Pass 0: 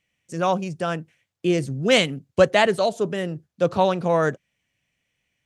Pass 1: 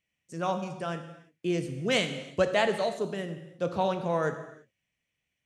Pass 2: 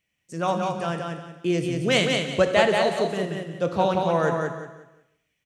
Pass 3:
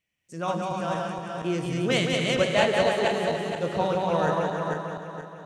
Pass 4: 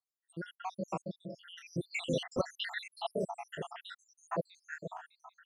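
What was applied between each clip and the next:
non-linear reverb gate 0.37 s falling, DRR 7 dB; gain -8.5 dB
feedback echo 0.181 s, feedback 28%, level -4 dB; gain +5 dB
regenerating reverse delay 0.237 s, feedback 59%, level -2 dB; gain -4.5 dB
random spectral dropouts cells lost 85%; wow and flutter 29 cents; gain -4 dB

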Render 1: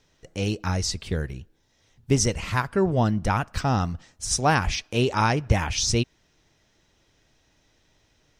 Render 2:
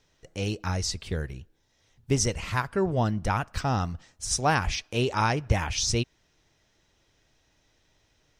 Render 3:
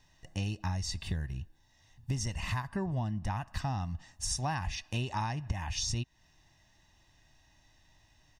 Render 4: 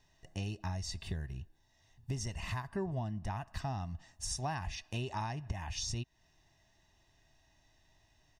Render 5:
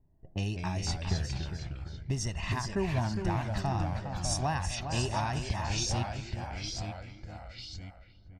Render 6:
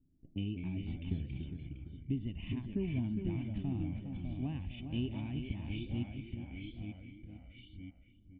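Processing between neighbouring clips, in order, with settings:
bell 220 Hz -2.5 dB 1.3 oct; gain -2.5 dB
harmonic-percussive split harmonic +5 dB; comb 1.1 ms, depth 74%; compressor 8:1, threshold -27 dBFS, peak gain reduction 17 dB; gain -3.5 dB
small resonant body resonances 400/660 Hz, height 7 dB; gain -4.5 dB
feedback echo 0.409 s, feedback 35%, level -8 dB; low-pass opened by the level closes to 340 Hz, open at -34 dBFS; echoes that change speed 0.152 s, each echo -2 st, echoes 2, each echo -6 dB; gain +5.5 dB
vocal tract filter i; gain +5.5 dB

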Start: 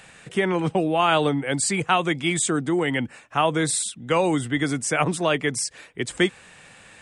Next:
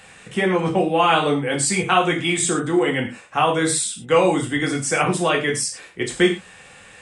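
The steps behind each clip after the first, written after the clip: non-linear reverb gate 0.14 s falling, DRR -1 dB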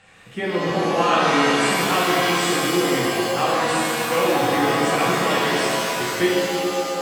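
air absorption 61 m; shimmer reverb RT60 2.8 s, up +7 st, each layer -2 dB, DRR -3.5 dB; gain -7 dB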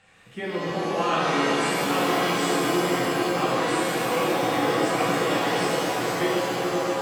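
repeats that get brighter 0.52 s, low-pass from 750 Hz, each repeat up 1 oct, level -3 dB; gain -6 dB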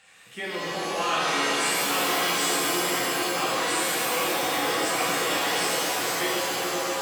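tilt +3 dB/oct; in parallel at -7 dB: hard clip -27.5 dBFS, distortion -7 dB; on the sum: gain -3.5 dB

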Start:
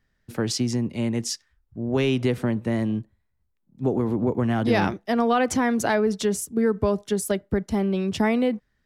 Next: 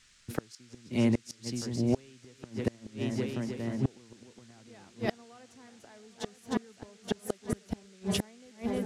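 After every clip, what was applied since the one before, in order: multi-head echo 0.309 s, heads first and third, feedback 53%, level -13 dB; flipped gate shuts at -16 dBFS, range -33 dB; band noise 1300–7900 Hz -63 dBFS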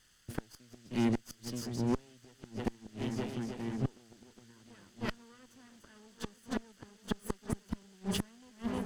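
minimum comb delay 0.64 ms; gain -3 dB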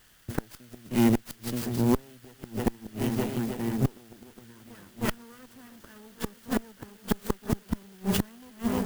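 clock jitter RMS 0.049 ms; gain +8 dB

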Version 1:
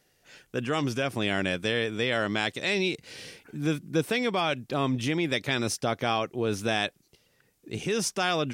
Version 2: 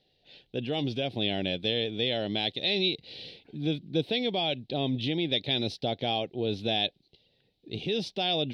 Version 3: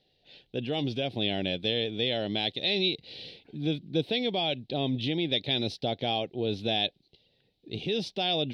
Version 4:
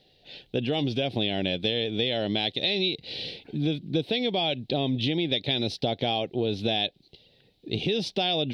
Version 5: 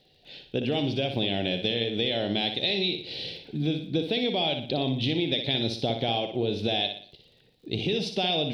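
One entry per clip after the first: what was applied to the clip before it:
EQ curve 780 Hz 0 dB, 1200 Hz -22 dB, 3900 Hz +10 dB, 6800 Hz -24 dB; gain -2 dB
nothing audible
compressor 4:1, threshold -32 dBFS, peak gain reduction 9 dB; gain +8.5 dB
flutter echo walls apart 10.3 m, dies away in 0.49 s; crackle 35/s -50 dBFS; gain -1 dB

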